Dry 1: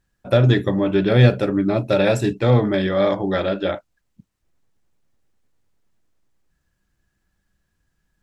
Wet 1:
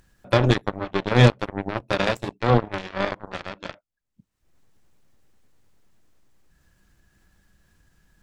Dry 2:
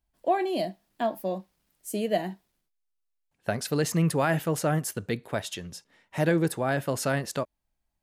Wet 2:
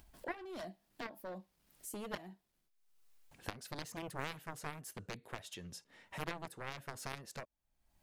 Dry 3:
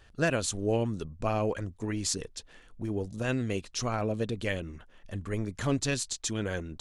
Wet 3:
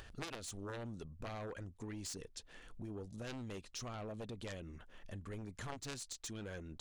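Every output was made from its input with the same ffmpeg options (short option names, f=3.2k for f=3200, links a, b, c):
-af "aeval=exprs='0.891*(cos(1*acos(clip(val(0)/0.891,-1,1)))-cos(1*PI/2))+0.141*(cos(7*acos(clip(val(0)/0.891,-1,1)))-cos(7*PI/2))':c=same,acompressor=mode=upward:threshold=-34dB:ratio=2.5,volume=-1.5dB"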